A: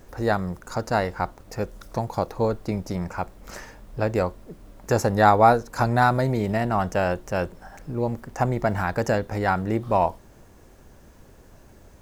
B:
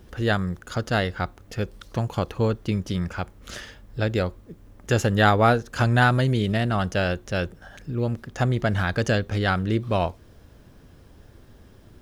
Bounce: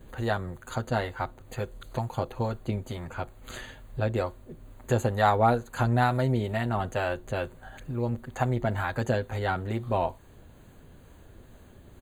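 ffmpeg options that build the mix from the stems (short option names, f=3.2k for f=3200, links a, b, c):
-filter_complex "[0:a]acrossover=split=640[a][b];[a]aeval=exprs='val(0)*(1-0.5/2+0.5/2*cos(2*PI*2.2*n/s))':c=same[c];[b]aeval=exprs='val(0)*(1-0.5/2-0.5/2*cos(2*PI*2.2*n/s))':c=same[d];[c][d]amix=inputs=2:normalize=0,volume=-4dB[e];[1:a]acompressor=threshold=-34dB:ratio=2,adelay=8.5,volume=-3dB[f];[e][f]amix=inputs=2:normalize=0,asuperstop=centerf=5400:order=12:qfactor=3.5"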